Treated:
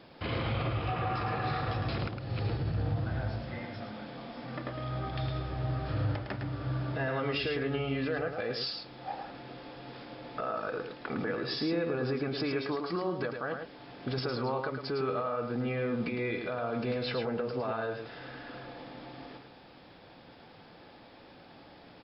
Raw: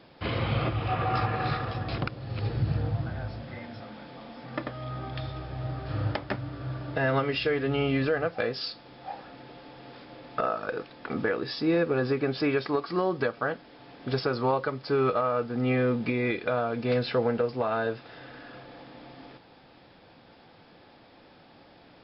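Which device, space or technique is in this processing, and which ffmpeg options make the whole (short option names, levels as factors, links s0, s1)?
stacked limiters: -af "alimiter=limit=0.1:level=0:latency=1:release=203,alimiter=level_in=1.12:limit=0.0631:level=0:latency=1:release=29,volume=0.891,aecho=1:1:108:0.501"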